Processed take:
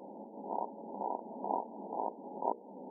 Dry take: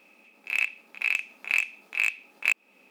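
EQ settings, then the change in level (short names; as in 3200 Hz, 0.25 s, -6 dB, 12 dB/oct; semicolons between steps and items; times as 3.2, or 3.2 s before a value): brick-wall FIR low-pass 1000 Hz; notches 60/120/180/240/300/360/420/480/540/600 Hz; +17.0 dB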